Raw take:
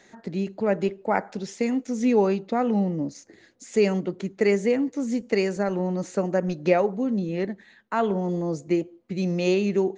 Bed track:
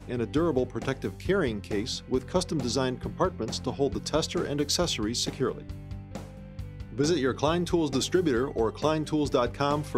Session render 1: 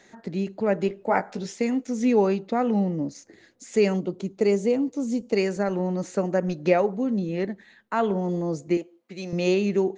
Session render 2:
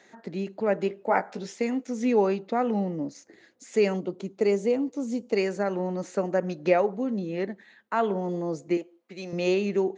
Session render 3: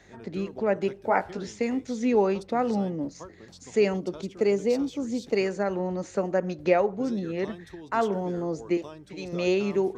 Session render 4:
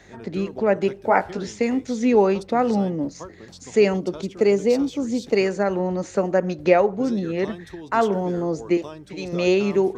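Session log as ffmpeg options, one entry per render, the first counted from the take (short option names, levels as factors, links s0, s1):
-filter_complex "[0:a]asettb=1/sr,asplit=3[s0][s1][s2];[s0]atrim=end=0.884[s3];[s1]atrim=start=0.88:end=1.53,asetpts=PTS-STARTPTS,afade=t=in:d=0.004:c=qsin,afade=t=out:st=0.646:d=0.004:c=qsin,asplit=2[s4][s5];[s5]adelay=17,volume=0.531[s6];[s4][s6]amix=inputs=2:normalize=0,atrim=end_sample=28665[s7];[s2]atrim=start=1.526[s8];[s3][s7]acrossfade=d=0.004:c1=hsin:c2=qsin[s9];[s9][s8]acrossfade=d=0.004:c1=qsin:c2=hsin,asettb=1/sr,asplit=3[s10][s11][s12];[s10]atrim=end=3.964[s13];[s11]atrim=start=3.96:end=5.37,asetpts=PTS-STARTPTS,afade=t=in:d=0.004:c=qsin,afade=t=out:st=1.406:d=0.004:c=qsin,equalizer=f=1800:t=o:w=0.72:g=-12[s14];[s12]atrim=start=5.366[s15];[s13][s14]acrossfade=d=0.004:c1=hsin:c2=qsin[s16];[s16][s15]acrossfade=d=0.004:c1=qsin:c2=hsin,asettb=1/sr,asplit=3[s17][s18][s19];[s17]atrim=end=8.774[s20];[s18]atrim=start=8.77:end=9.33,asetpts=PTS-STARTPTS,afade=t=in:d=0.004:c=qsin,afade=t=out:st=0.556:d=0.004:c=qsin,highpass=f=650:p=1[s21];[s19]atrim=start=9.326[s22];[s20][s21]acrossfade=d=0.004:c1=hsin:c2=qsin[s23];[s23][s22]acrossfade=d=0.004:c1=qsin:c2=hsin"
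-af "highpass=f=280:p=1,highshelf=f=4300:g=-5.5"
-filter_complex "[1:a]volume=0.133[s0];[0:a][s0]amix=inputs=2:normalize=0"
-af "volume=1.88"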